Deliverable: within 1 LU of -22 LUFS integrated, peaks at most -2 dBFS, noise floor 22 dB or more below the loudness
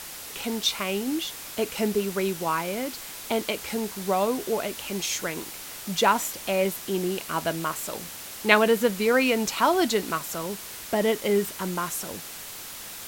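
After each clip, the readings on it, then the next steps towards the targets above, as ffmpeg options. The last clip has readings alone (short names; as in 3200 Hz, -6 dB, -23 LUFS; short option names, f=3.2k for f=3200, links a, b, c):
noise floor -40 dBFS; noise floor target -49 dBFS; loudness -26.5 LUFS; peak -1.5 dBFS; loudness target -22.0 LUFS
-> -af "afftdn=nr=9:nf=-40"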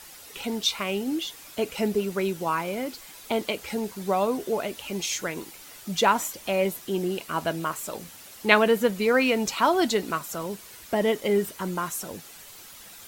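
noise floor -46 dBFS; noise floor target -49 dBFS
-> -af "afftdn=nr=6:nf=-46"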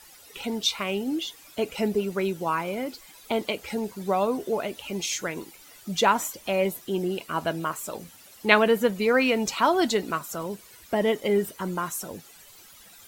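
noise floor -51 dBFS; loudness -26.5 LUFS; peak -1.5 dBFS; loudness target -22.0 LUFS
-> -af "volume=4.5dB,alimiter=limit=-2dB:level=0:latency=1"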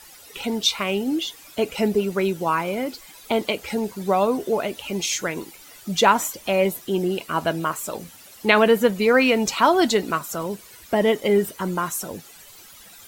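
loudness -22.0 LUFS; peak -2.0 dBFS; noise floor -46 dBFS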